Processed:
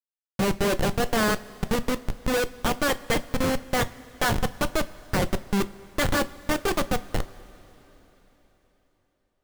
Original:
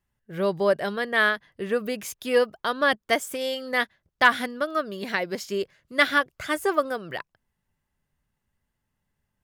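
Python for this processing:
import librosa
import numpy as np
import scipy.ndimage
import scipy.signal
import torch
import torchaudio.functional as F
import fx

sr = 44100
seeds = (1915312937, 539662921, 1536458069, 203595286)

y = fx.spec_quant(x, sr, step_db=30)
y = fx.schmitt(y, sr, flips_db=-24.5)
y = fx.rev_double_slope(y, sr, seeds[0], early_s=0.21, late_s=4.1, knee_db=-20, drr_db=10.5)
y = y * 10.0 ** (5.5 / 20.0)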